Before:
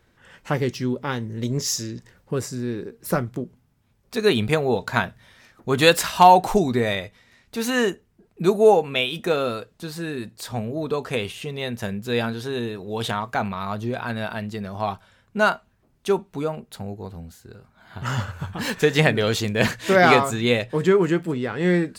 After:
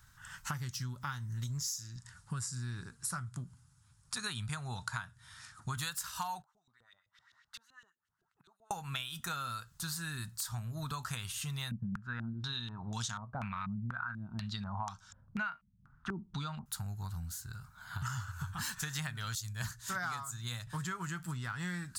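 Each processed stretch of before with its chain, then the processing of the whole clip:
0:01.96–0:05.77: high-pass filter 61 Hz + notch filter 6,100 Hz, Q 13 + bad sample-rate conversion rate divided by 2×, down none, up filtered
0:06.42–0:08.71: gate with flip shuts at −22 dBFS, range −27 dB + auto-filter band-pass saw up 7.8 Hz 380–3,400 Hz + notch filter 2,400 Hz, Q 7.2
0:11.71–0:16.66: parametric band 220 Hz +8 dB 0.73 octaves + low-pass on a step sequencer 4.1 Hz 200–6,300 Hz
0:19.35–0:20.67: parametric band 2,600 Hz −6 dB + multiband upward and downward expander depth 100%
whole clip: drawn EQ curve 140 Hz 0 dB, 200 Hz −12 dB, 470 Hz −29 dB, 910 Hz −5 dB, 1,400 Hz +3 dB, 2,200 Hz −9 dB, 6,700 Hz +7 dB; downward compressor 12 to 1, threshold −37 dBFS; level +1.5 dB

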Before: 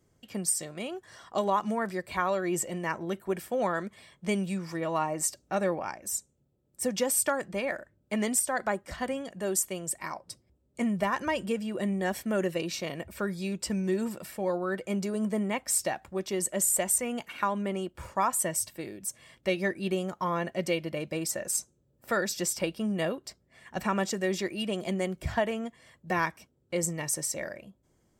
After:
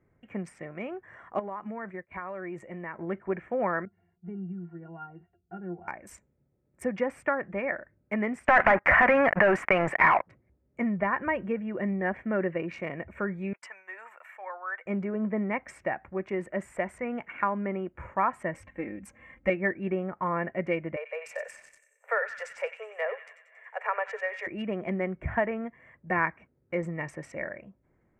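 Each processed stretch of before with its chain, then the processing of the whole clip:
0:01.39–0:02.99: low-pass filter 10,000 Hz + downward expander −34 dBFS + downward compressor 4 to 1, threshold −35 dBFS
0:03.85–0:05.88: high-frequency loss of the air 310 metres + resonances in every octave F, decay 0.12 s
0:08.48–0:10.27: flat-topped bell 1,300 Hz +13 dB 2.5 octaves + leveller curve on the samples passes 5 + downward compressor 10 to 1, threshold −19 dBFS
0:13.53–0:14.86: high-pass filter 810 Hz 24 dB per octave + downward expander −52 dBFS
0:18.54–0:19.50: low-shelf EQ 160 Hz +8 dB + comb filter 3.8 ms, depth 72%
0:20.96–0:24.47: Chebyshev high-pass filter 420 Hz, order 10 + delay with a high-pass on its return 92 ms, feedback 58%, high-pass 2,300 Hz, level −4 dB
whole clip: adaptive Wiener filter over 9 samples; treble cut that deepens with the level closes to 2,900 Hz, closed at −27.5 dBFS; high shelf with overshoot 2,800 Hz −9.5 dB, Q 3

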